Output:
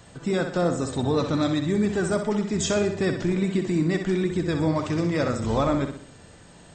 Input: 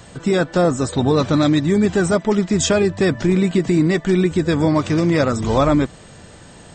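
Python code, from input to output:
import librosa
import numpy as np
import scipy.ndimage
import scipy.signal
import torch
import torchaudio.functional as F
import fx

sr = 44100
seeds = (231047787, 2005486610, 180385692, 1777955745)

y = fx.echo_feedback(x, sr, ms=63, feedback_pct=47, wet_db=-7.5)
y = y * 10.0 ** (-8.0 / 20.0)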